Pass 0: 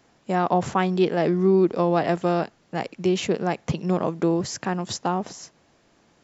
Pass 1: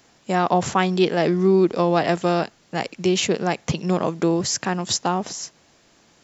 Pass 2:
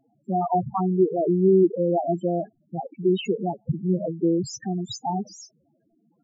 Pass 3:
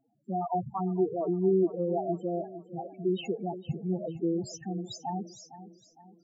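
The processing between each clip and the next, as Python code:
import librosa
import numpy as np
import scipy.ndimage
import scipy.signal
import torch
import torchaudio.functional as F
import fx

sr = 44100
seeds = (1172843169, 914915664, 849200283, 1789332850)

y1 = fx.high_shelf(x, sr, hz=2500.0, db=9.0)
y1 = F.gain(torch.from_numpy(y1), 1.5).numpy()
y2 = fx.spec_topn(y1, sr, count=4)
y3 = fx.echo_feedback(y2, sr, ms=459, feedback_pct=44, wet_db=-14.5)
y3 = F.gain(torch.from_numpy(y3), -7.5).numpy()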